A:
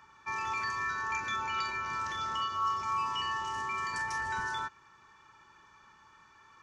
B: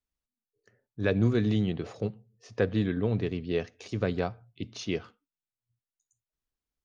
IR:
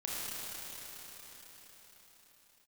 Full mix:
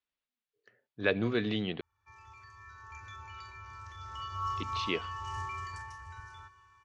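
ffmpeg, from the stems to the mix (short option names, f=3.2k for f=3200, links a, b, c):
-filter_complex "[0:a]lowshelf=f=130:t=q:w=3:g=12.5,adelay=1800,volume=-4.5dB,afade=t=in:st=2.58:d=0.48:silence=0.473151,afade=t=in:st=3.99:d=0.53:silence=0.298538,afade=t=out:st=5.35:d=0.62:silence=0.237137,asplit=2[a][b];[b]volume=-19.5dB[c];[1:a]lowpass=f=3.5k:w=0.5412,lowpass=f=3.5k:w=1.3066,aemphasis=mode=production:type=riaa,volume=1dB,asplit=3[d][e][f];[d]atrim=end=1.81,asetpts=PTS-STARTPTS,afade=t=out:st=1.806:d=0.004:c=hsin[g];[e]atrim=start=1.81:end=4.57,asetpts=PTS-STARTPTS,volume=0[h];[f]atrim=start=4.57,asetpts=PTS-STARTPTS,afade=t=in:d=0.004:c=hsin[i];[g][h][i]concat=n=3:v=0:a=1,asplit=2[j][k];[k]apad=whole_len=371619[l];[a][l]sidechaincompress=threshold=-35dB:ratio=8:attack=5.6:release=507[m];[2:a]atrim=start_sample=2205[n];[c][n]afir=irnorm=-1:irlink=0[o];[m][j][o]amix=inputs=3:normalize=0"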